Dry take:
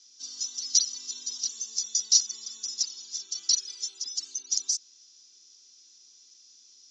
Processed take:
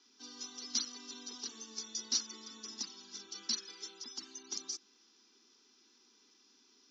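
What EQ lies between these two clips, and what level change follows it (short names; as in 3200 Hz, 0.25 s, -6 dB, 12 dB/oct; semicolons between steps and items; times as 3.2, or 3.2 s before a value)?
LPF 1600 Hz 12 dB/oct; bell 220 Hz +4 dB 0.41 oct; +9.5 dB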